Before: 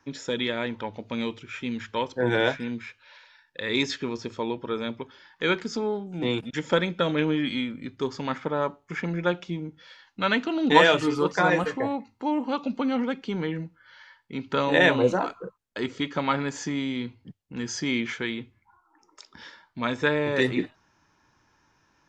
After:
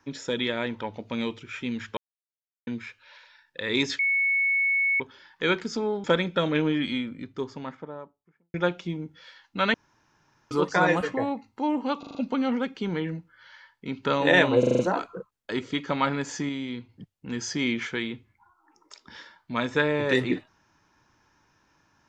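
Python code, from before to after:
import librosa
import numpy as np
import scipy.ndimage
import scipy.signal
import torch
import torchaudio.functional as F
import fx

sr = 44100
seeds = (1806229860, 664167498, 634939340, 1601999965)

y = fx.studio_fade_out(x, sr, start_s=7.39, length_s=1.78)
y = fx.edit(y, sr, fx.silence(start_s=1.97, length_s=0.7),
    fx.bleep(start_s=3.99, length_s=1.01, hz=2210.0, db=-20.5),
    fx.cut(start_s=6.04, length_s=0.63),
    fx.room_tone_fill(start_s=10.37, length_s=0.77),
    fx.stutter(start_s=12.62, slice_s=0.04, count=5),
    fx.stutter(start_s=15.06, slice_s=0.04, count=6),
    fx.clip_gain(start_s=16.76, length_s=0.4, db=-3.5), tone=tone)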